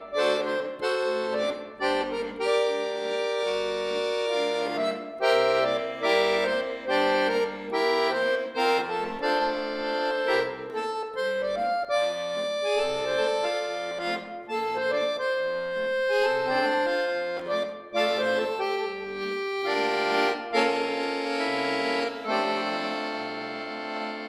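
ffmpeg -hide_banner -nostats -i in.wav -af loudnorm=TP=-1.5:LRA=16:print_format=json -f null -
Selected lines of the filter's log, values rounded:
"input_i" : "-26.9",
"input_tp" : "-9.3",
"input_lra" : "3.8",
"input_thresh" : "-36.9",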